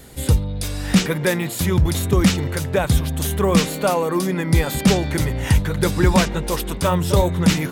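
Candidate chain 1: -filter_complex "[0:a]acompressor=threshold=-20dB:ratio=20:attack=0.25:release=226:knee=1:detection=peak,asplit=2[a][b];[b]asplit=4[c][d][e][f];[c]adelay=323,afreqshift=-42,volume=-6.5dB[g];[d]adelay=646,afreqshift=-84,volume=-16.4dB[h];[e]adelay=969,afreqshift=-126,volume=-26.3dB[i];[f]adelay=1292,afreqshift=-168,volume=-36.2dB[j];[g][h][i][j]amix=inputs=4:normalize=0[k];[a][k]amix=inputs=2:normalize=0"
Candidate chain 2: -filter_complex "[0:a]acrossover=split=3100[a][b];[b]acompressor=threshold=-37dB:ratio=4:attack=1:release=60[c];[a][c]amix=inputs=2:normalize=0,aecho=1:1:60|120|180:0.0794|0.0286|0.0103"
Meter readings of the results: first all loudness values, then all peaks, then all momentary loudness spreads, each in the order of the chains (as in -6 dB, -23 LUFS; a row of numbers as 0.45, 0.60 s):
-27.0, -20.0 LUFS; -14.0, -5.0 dBFS; 2, 5 LU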